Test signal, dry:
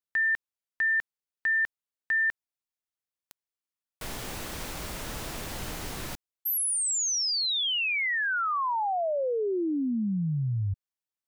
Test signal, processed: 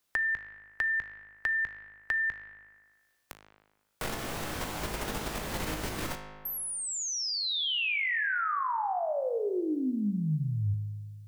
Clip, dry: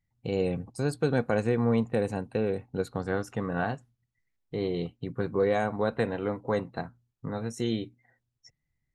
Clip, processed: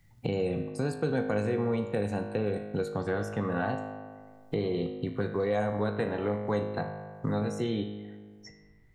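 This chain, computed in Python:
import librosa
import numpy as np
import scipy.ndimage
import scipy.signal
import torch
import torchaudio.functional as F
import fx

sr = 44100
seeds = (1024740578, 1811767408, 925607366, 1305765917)

p1 = fx.level_steps(x, sr, step_db=18)
p2 = x + F.gain(torch.from_numpy(p1), 2.0).numpy()
p3 = fx.comb_fb(p2, sr, f0_hz=52.0, decay_s=1.1, harmonics='all', damping=0.3, mix_pct=80)
p4 = fx.band_squash(p3, sr, depth_pct=70)
y = F.gain(torch.from_numpy(p4), 4.5).numpy()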